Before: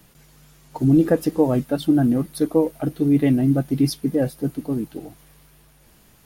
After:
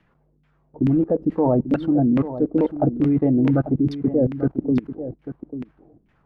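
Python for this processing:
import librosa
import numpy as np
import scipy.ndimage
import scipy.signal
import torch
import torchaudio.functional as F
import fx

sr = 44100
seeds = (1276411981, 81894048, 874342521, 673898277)

y = fx.filter_lfo_lowpass(x, sr, shape='saw_down', hz=2.3, low_hz=240.0, high_hz=2400.0, q=1.9)
y = fx.level_steps(y, sr, step_db=23)
y = y + 10.0 ** (-12.0 / 20.0) * np.pad(y, (int(842 * sr / 1000.0), 0))[:len(y)]
y = y * librosa.db_to_amplitude(6.0)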